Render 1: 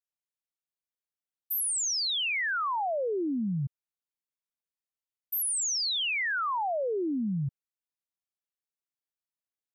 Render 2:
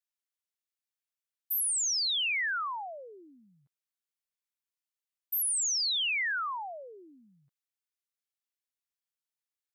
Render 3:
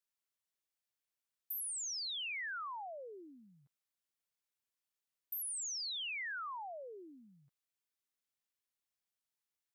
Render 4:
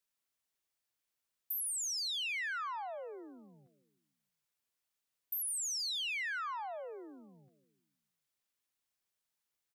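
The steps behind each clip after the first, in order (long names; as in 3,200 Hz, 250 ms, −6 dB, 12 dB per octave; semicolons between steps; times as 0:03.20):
high-pass filter 1,300 Hz 12 dB per octave
downward compressor 2.5 to 1, threshold −46 dBFS, peak gain reduction 11.5 dB
repeating echo 157 ms, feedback 54%, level −17 dB; level +3.5 dB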